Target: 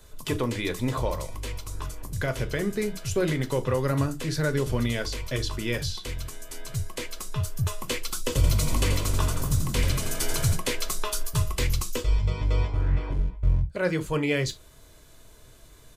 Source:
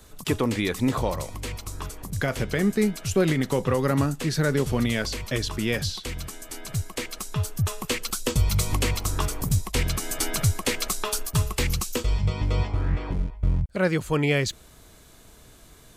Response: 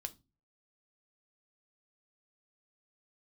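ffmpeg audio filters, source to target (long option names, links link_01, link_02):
-filter_complex "[0:a]asplit=3[link_01][link_02][link_03];[link_01]afade=type=out:start_time=8.31:duration=0.02[link_04];[link_02]asplit=9[link_05][link_06][link_07][link_08][link_09][link_10][link_11][link_12][link_13];[link_06]adelay=85,afreqshift=47,volume=-6.5dB[link_14];[link_07]adelay=170,afreqshift=94,volume=-10.9dB[link_15];[link_08]adelay=255,afreqshift=141,volume=-15.4dB[link_16];[link_09]adelay=340,afreqshift=188,volume=-19.8dB[link_17];[link_10]adelay=425,afreqshift=235,volume=-24.2dB[link_18];[link_11]adelay=510,afreqshift=282,volume=-28.7dB[link_19];[link_12]adelay=595,afreqshift=329,volume=-33.1dB[link_20];[link_13]adelay=680,afreqshift=376,volume=-37.6dB[link_21];[link_05][link_14][link_15][link_16][link_17][link_18][link_19][link_20][link_21]amix=inputs=9:normalize=0,afade=type=in:start_time=8.31:duration=0.02,afade=type=out:start_time=10.55:duration=0.02[link_22];[link_03]afade=type=in:start_time=10.55:duration=0.02[link_23];[link_04][link_22][link_23]amix=inputs=3:normalize=0[link_24];[1:a]atrim=start_sample=2205,atrim=end_sample=3528[link_25];[link_24][link_25]afir=irnorm=-1:irlink=0"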